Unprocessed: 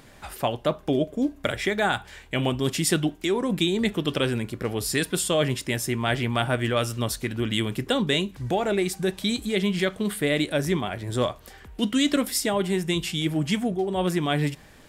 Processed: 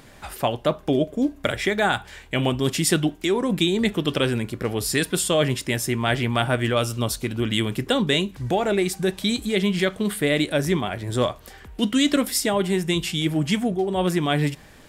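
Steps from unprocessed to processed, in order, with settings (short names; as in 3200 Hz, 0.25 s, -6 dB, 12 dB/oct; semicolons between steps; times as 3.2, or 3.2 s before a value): 6.74–7.42 bell 1800 Hz -7 dB 0.36 oct; gain +2.5 dB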